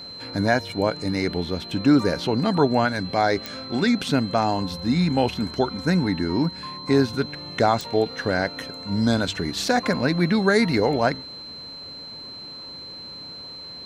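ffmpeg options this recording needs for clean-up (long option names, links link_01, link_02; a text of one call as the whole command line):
ffmpeg -i in.wav -af "adeclick=threshold=4,bandreject=frequency=4100:width=30" out.wav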